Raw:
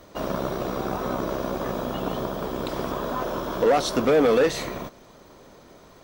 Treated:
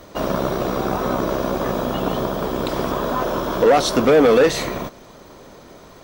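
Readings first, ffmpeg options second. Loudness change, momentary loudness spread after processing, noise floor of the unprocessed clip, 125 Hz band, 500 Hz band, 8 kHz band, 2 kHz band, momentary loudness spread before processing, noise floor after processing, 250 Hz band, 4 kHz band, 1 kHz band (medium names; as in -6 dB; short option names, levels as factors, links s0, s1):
+6.0 dB, 10 LU, -51 dBFS, +6.0 dB, +5.5 dB, +6.5 dB, +6.0 dB, 10 LU, -44 dBFS, +6.0 dB, +6.0 dB, +6.0 dB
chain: -af "aeval=exprs='0.251*(cos(1*acos(clip(val(0)/0.251,-1,1)))-cos(1*PI/2))+0.00282*(cos(5*acos(clip(val(0)/0.251,-1,1)))-cos(5*PI/2))':c=same,acontrast=52"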